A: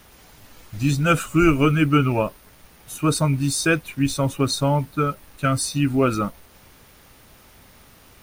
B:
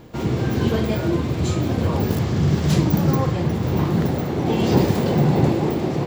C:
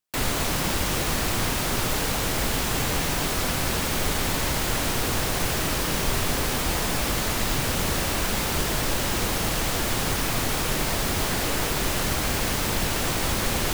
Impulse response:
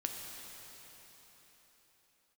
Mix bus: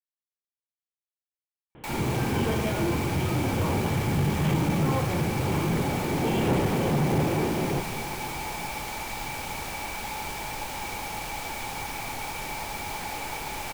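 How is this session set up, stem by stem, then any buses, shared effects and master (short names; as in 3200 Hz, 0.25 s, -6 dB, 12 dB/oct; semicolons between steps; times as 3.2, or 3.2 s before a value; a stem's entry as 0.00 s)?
off
-5.5 dB, 1.75 s, send -4.5 dB, elliptic low-pass 3200 Hz
-13.0 dB, 1.70 s, send -9.5 dB, small resonant body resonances 850/2300 Hz, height 16 dB, ringing for 35 ms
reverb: on, pre-delay 4 ms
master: low shelf 490 Hz -3 dB; soft clip -17 dBFS, distortion -17 dB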